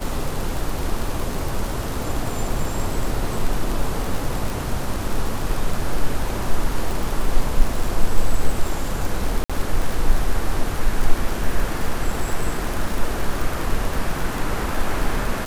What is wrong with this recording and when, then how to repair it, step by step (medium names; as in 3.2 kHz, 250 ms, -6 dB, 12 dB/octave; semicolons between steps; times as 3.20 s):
crackle 52 per s -22 dBFS
9.44–9.50 s: dropout 56 ms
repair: de-click; interpolate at 9.44 s, 56 ms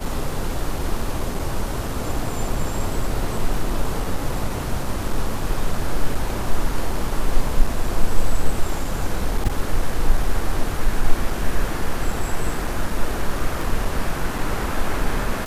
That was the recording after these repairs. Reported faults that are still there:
nothing left